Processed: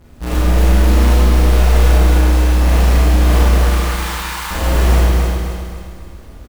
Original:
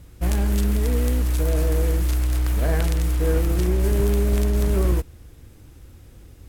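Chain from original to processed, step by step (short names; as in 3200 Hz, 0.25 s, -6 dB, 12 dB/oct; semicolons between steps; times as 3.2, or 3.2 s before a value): half-waves squared off; 3.54–4.51 steep high-pass 830 Hz 96 dB/oct; on a send: feedback echo 0.262 s, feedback 44%, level -4 dB; on the sum: Schroeder reverb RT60 1.3 s, combs from 26 ms, DRR -8 dB; gain -6.5 dB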